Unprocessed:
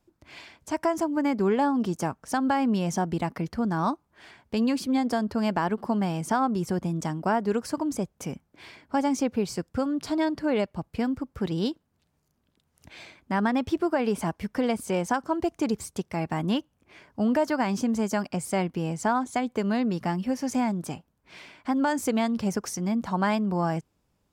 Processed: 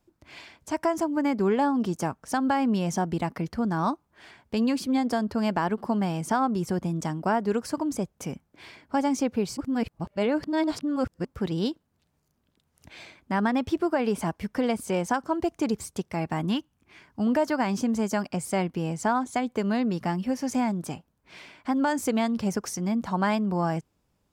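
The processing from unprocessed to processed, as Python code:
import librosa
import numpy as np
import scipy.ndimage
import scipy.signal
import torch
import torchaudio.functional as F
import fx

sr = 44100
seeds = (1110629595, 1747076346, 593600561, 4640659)

y = fx.peak_eq(x, sr, hz=540.0, db=-9.0, octaves=0.71, at=(16.46, 17.27))
y = fx.edit(y, sr, fx.reverse_span(start_s=9.57, length_s=1.68), tone=tone)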